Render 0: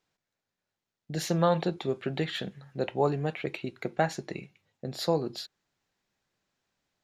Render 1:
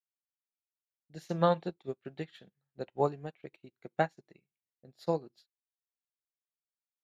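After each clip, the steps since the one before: upward expander 2.5:1, over -44 dBFS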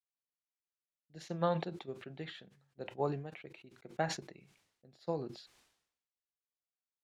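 air absorption 58 m; sustainer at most 75 dB/s; gain -6 dB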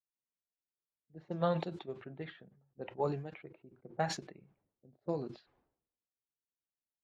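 bin magnitudes rounded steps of 15 dB; low-pass opened by the level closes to 480 Hz, open at -34 dBFS; gain +1 dB

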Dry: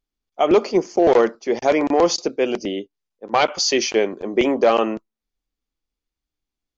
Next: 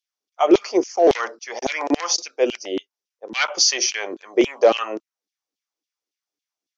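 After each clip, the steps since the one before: LFO high-pass saw down 3.6 Hz 260–3500 Hz; bell 5700 Hz +9.5 dB 0.41 oct; gain -3 dB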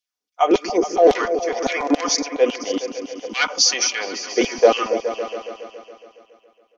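comb 4.1 ms, depth 49%; repeats that get brighter 0.139 s, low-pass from 200 Hz, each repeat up 2 oct, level -6 dB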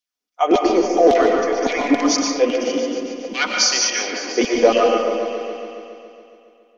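bell 250 Hz +5 dB 0.54 oct; on a send at -1 dB: reverb RT60 1.3 s, pre-delay 80 ms; on the sum: gain -1 dB

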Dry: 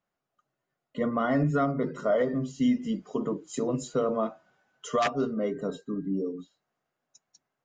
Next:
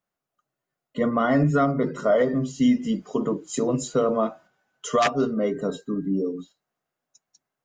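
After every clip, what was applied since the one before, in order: gate -52 dBFS, range -7 dB; high shelf 6700 Hz +5.5 dB; gain +5 dB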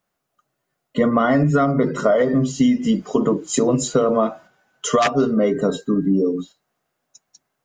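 compressor, threshold -22 dBFS, peak gain reduction 7.5 dB; gain +9 dB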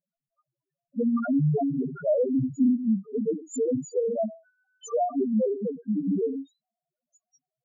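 loudest bins only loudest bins 1; treble ducked by the level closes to 2500 Hz, closed at -19.5 dBFS

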